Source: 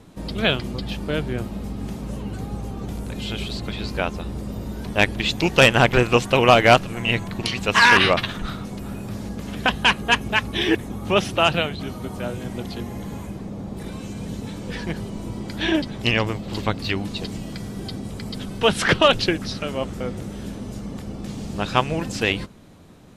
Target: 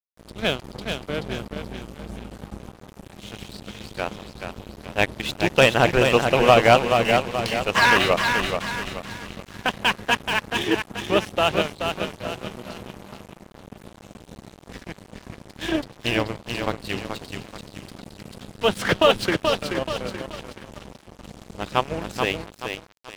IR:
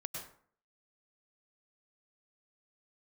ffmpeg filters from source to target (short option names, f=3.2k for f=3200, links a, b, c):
-af "aecho=1:1:430|860|1290|1720|2150|2580|3010:0.562|0.292|0.152|0.0791|0.0411|0.0214|0.0111,adynamicequalizer=threshold=0.0398:dfrequency=560:dqfactor=0.98:tfrequency=560:tqfactor=0.98:attack=5:release=100:ratio=0.375:range=2:mode=boostabove:tftype=bell,aeval=exprs='sgn(val(0))*max(abs(val(0))-0.0422,0)':c=same,volume=-3dB"